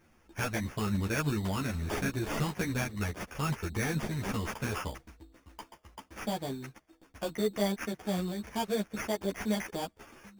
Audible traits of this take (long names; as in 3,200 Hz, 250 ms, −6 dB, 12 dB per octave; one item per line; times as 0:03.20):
aliases and images of a low sample rate 4,000 Hz, jitter 0%
a shimmering, thickened sound